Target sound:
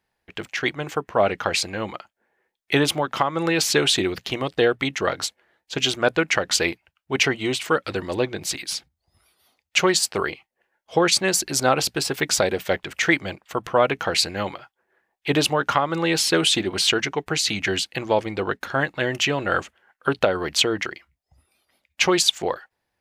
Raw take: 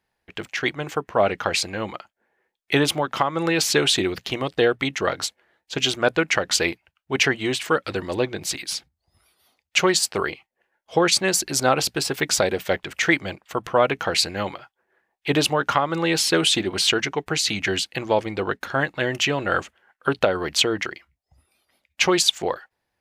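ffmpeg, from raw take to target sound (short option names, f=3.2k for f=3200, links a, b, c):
-filter_complex "[0:a]asettb=1/sr,asplit=3[a][b][c];[a]atrim=end=7.224[d];[b]atrim=start=7.22:end=7.66,asetpts=PTS-STARTPTS,afade=t=in:d=0.004:c=qsin,afade=t=out:st=0.436:d=0.004:c=qsin,bandreject=f=1.7k:w=8[e];[c]atrim=start=7.656[f];[d][e]acrossfade=d=0.004:c1=hsin:c2=qsin[g];[g][f]acrossfade=d=0.004:c1=qsin:c2=hsin"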